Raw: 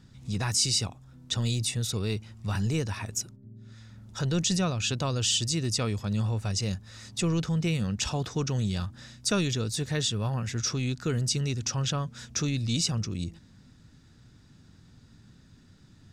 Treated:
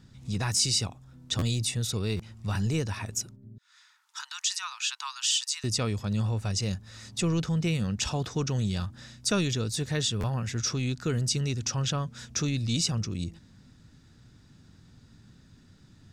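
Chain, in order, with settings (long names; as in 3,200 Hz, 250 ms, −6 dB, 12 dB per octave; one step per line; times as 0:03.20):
0:03.58–0:05.64: Butterworth high-pass 900 Hz 72 dB per octave
buffer that repeats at 0:00.56/0:01.38/0:02.16/0:10.20, samples 512, times 2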